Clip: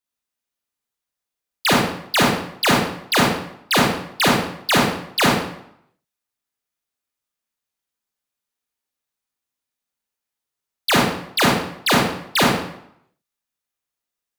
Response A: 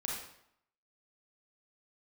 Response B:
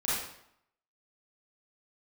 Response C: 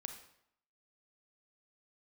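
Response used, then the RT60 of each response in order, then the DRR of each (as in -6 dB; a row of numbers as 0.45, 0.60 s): A; 0.70, 0.70, 0.70 s; -3.5, -10.0, 5.5 dB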